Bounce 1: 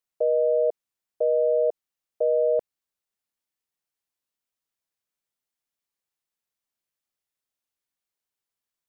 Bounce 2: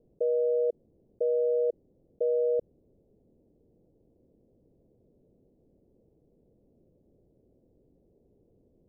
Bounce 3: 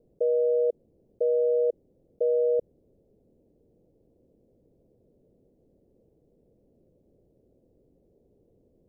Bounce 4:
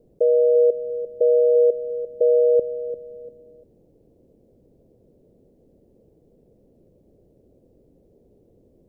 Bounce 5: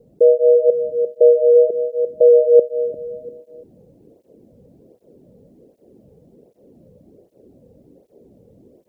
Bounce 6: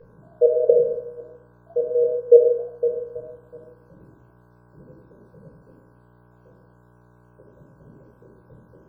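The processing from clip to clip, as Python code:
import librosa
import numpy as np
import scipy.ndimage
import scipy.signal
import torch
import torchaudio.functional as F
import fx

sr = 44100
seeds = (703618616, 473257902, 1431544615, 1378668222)

y1 = scipy.signal.sosfilt(scipy.signal.butter(6, 500.0, 'lowpass', fs=sr, output='sos'), x)
y1 = fx.env_flatten(y1, sr, amount_pct=50)
y2 = fx.peak_eq(y1, sr, hz=530.0, db=3.0, octaves=0.77)
y3 = fx.echo_feedback(y2, sr, ms=346, feedback_pct=32, wet_db=-12.5)
y3 = y3 * 10.0 ** (7.0 / 20.0)
y4 = fx.rider(y3, sr, range_db=4, speed_s=0.5)
y4 = fx.flanger_cancel(y4, sr, hz=1.3, depth_ms=3.3)
y4 = y4 * 10.0 ** (8.5 / 20.0)
y5 = fx.spec_dropout(y4, sr, seeds[0], share_pct=78)
y5 = fx.dmg_buzz(y5, sr, base_hz=60.0, harmonics=27, level_db=-59.0, tilt_db=-4, odd_only=False)
y5 = fx.room_shoebox(y5, sr, seeds[1], volume_m3=960.0, walls='furnished', distance_m=5.2)
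y5 = y5 * 10.0 ** (-3.0 / 20.0)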